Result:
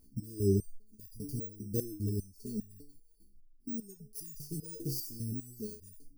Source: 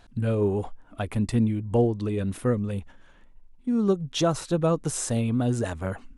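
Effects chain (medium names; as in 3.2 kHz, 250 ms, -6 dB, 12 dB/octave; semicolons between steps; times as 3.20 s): bit-reversed sample order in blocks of 16 samples; brick-wall FIR band-stop 460–4400 Hz; resonator arpeggio 5 Hz 67–980 Hz; trim +3 dB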